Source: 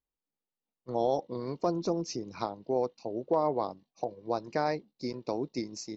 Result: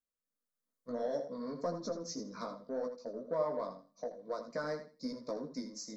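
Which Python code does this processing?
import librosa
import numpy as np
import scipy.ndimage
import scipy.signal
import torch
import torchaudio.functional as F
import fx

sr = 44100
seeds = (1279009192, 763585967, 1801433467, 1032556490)

p1 = fx.recorder_agc(x, sr, target_db=-22.5, rise_db_per_s=7.8, max_gain_db=30)
p2 = 10.0 ** (-26.5 / 20.0) * np.tanh(p1 / 10.0 ** (-26.5 / 20.0))
p3 = p1 + (p2 * librosa.db_to_amplitude(-3.0))
p4 = fx.low_shelf(p3, sr, hz=120.0, db=-7.0)
p5 = fx.fixed_phaser(p4, sr, hz=540.0, stages=8)
p6 = p5 + fx.echo_feedback(p5, sr, ms=81, feedback_pct=21, wet_db=-10.0, dry=0)
p7 = fx.chorus_voices(p6, sr, voices=4, hz=0.55, base_ms=16, depth_ms=4.9, mix_pct=40)
y = p7 * librosa.db_to_amplitude(-4.0)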